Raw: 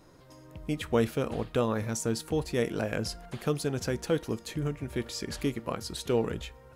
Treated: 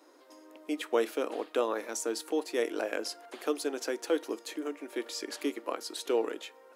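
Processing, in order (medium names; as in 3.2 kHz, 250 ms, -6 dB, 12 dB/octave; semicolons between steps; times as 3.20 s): elliptic high-pass 290 Hz, stop band 50 dB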